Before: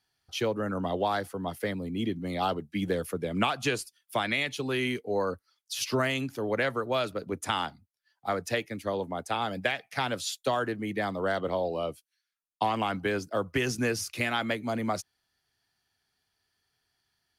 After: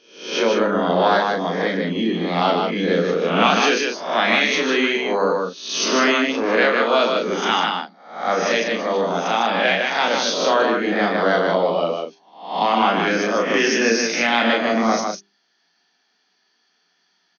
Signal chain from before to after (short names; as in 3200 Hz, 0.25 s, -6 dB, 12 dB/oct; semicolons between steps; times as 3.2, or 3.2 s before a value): spectral swells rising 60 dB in 0.56 s; notches 50/100/150/200/250/300/350/400 Hz; FFT band-pass 170–6600 Hz; transient shaper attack -5 dB, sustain -1 dB; loudspeakers at several distances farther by 12 m -4 dB, 52 m -4 dB, 65 m -9 dB; gain +8.5 dB